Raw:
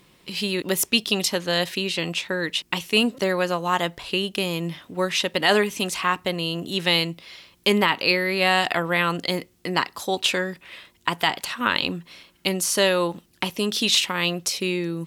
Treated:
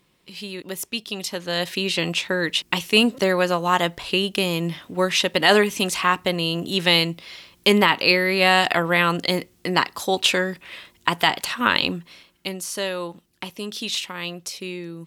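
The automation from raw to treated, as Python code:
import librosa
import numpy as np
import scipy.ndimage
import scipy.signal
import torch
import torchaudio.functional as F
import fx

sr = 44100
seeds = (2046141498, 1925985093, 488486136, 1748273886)

y = fx.gain(x, sr, db=fx.line((1.1, -8.0), (1.92, 3.0), (11.82, 3.0), (12.59, -7.0)))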